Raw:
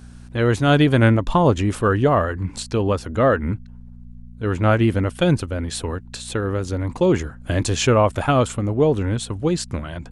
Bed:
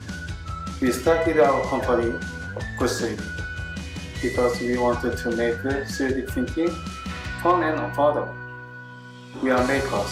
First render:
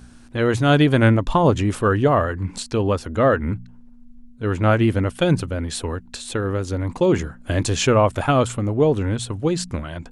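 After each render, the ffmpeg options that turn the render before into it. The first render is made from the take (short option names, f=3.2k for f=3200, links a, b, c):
-af "bandreject=f=60:t=h:w=4,bandreject=f=120:t=h:w=4,bandreject=f=180:t=h:w=4"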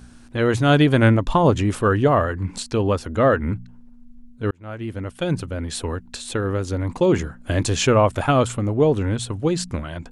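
-filter_complex "[0:a]asplit=2[a][b];[a]atrim=end=4.51,asetpts=PTS-STARTPTS,afade=t=out:st=4.506:d=0.004:c=hsin[c];[b]atrim=start=4.51,asetpts=PTS-STARTPTS,afade=t=in:d=1.38[d];[c][d]concat=n=2:v=0:a=1"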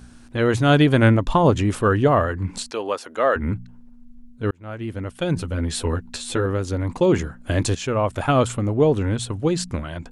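-filter_complex "[0:a]asettb=1/sr,asplit=3[a][b][c];[a]atrim=end=2.714[d];[b]atrim=start=2.71:end=3.36,asetpts=PTS-STARTPTS,afade=t=in:d=0.004:c=qsin,afade=t=out:st=0.646:d=0.004:c=qsin,highpass=510[e];[c]atrim=start=3.356[f];[d][e]acrossfade=d=0.004:c1=hsin:c2=qsin[g];[g][f]acrossfade=d=0.004:c1=qsin:c2=hsin,asettb=1/sr,asplit=3[h][i][j];[h]atrim=end=5.354[k];[i]atrim=start=5.35:end=6.46,asetpts=PTS-STARTPTS,afade=t=in:d=0.004:c=qsin,afade=t=out:st=1.106:d=0.004:c=qsin,asplit=2[l][m];[m]adelay=12,volume=-3dB[n];[l][n]amix=inputs=2:normalize=0,atrim=end_sample=48951[o];[j]atrim=start=6.456[p];[k][o]acrossfade=d=0.004:c1=hsin:c2=qsin[q];[q][p]acrossfade=d=0.004:c1=qsin:c2=hsin,asplit=2[r][s];[r]atrim=end=7.75,asetpts=PTS-STARTPTS,afade=t=out:st=7.746:d=0.004:c=hsin:silence=0.251189[t];[s]atrim=start=7.75,asetpts=PTS-STARTPTS,afade=t=in:d=0.64:silence=0.251189[u];[t][u]concat=n=2:v=0:a=1"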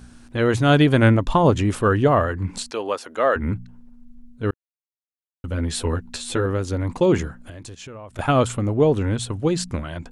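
-filter_complex "[0:a]asettb=1/sr,asplit=3[a][b][c];[a]atrim=end=7.374[d];[b]atrim=start=7.37:end=8.19,asetpts=PTS-STARTPTS,afade=t=in:d=0.004:c=qsin,afade=t=out:st=0.816:d=0.004:c=qsin,acompressor=threshold=-35dB:ratio=8:attack=3.2:release=140:knee=1:detection=peak[e];[c]atrim=start=8.186[f];[d][e]acrossfade=d=0.004:c1=hsin:c2=qsin[g];[g][f]acrossfade=d=0.004:c1=qsin:c2=hsin,asplit=3[h][i][j];[h]atrim=end=4.54,asetpts=PTS-STARTPTS,afade=t=out:st=4.536:d=0.004:c=hsin[k];[i]atrim=start=4.54:end=5.44,asetpts=PTS-STARTPTS,volume=0[l];[j]atrim=start=5.44,asetpts=PTS-STARTPTS,afade=t=in:d=0.004:c=hsin[m];[k][l][m]concat=n=3:v=0:a=1"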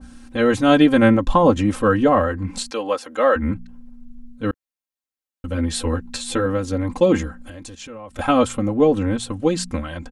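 -af "aecho=1:1:3.8:0.85,adynamicequalizer=threshold=0.0224:dfrequency=1800:dqfactor=0.7:tfrequency=1800:tqfactor=0.7:attack=5:release=100:ratio=0.375:range=2:mode=cutabove:tftype=highshelf"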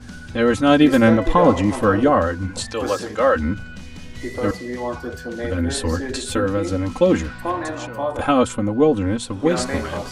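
-filter_complex "[1:a]volume=-5dB[a];[0:a][a]amix=inputs=2:normalize=0"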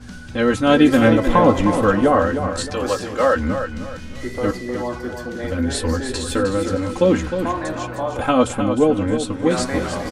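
-filter_complex "[0:a]asplit=2[a][b];[b]adelay=16,volume=-12.5dB[c];[a][c]amix=inputs=2:normalize=0,aecho=1:1:309|618|927|1236:0.376|0.124|0.0409|0.0135"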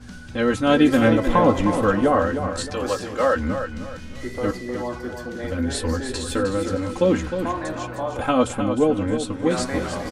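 -af "volume=-3dB"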